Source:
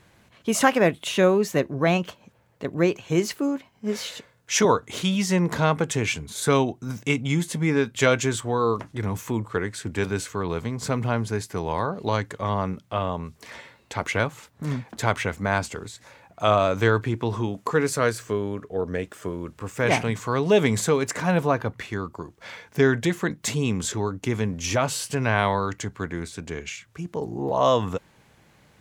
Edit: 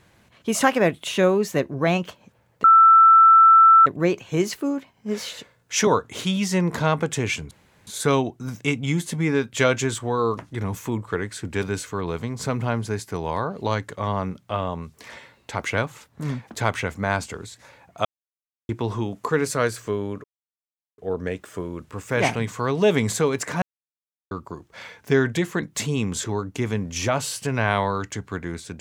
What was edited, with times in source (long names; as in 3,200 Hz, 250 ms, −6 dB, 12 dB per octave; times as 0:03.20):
0:02.64: insert tone 1,330 Hz −8.5 dBFS 1.22 s
0:06.29: splice in room tone 0.36 s
0:16.47–0:17.11: silence
0:18.66: splice in silence 0.74 s
0:21.30–0:21.99: silence